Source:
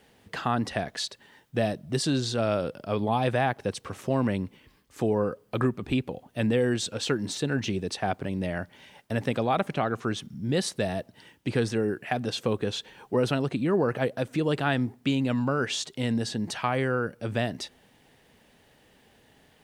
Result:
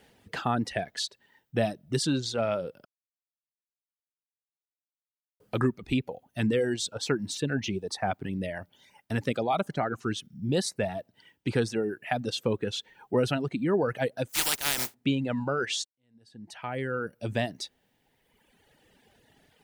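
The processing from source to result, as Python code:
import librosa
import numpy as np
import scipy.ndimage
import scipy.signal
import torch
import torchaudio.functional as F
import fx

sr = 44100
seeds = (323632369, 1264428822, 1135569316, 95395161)

y = fx.filter_lfo_notch(x, sr, shape='saw_up', hz=1.1, low_hz=400.0, high_hz=4200.0, q=2.7, at=(6.29, 10.84))
y = fx.spec_flatten(y, sr, power=0.14, at=(14.28, 14.93), fade=0.02)
y = fx.edit(y, sr, fx.silence(start_s=2.85, length_s=2.55),
    fx.fade_in_span(start_s=15.85, length_s=1.27, curve='qua'), tone=tone)
y = fx.dereverb_blind(y, sr, rt60_s=1.7)
y = fx.notch(y, sr, hz=1100.0, q=12.0)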